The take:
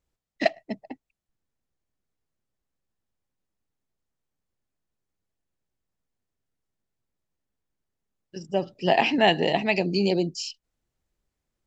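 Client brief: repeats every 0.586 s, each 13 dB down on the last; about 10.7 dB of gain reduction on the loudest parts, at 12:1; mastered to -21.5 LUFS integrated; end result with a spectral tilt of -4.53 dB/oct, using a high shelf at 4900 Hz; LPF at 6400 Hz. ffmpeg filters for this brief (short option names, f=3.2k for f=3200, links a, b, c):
-af "lowpass=6.4k,highshelf=f=4.9k:g=5.5,acompressor=threshold=-25dB:ratio=12,aecho=1:1:586|1172|1758:0.224|0.0493|0.0108,volume=10.5dB"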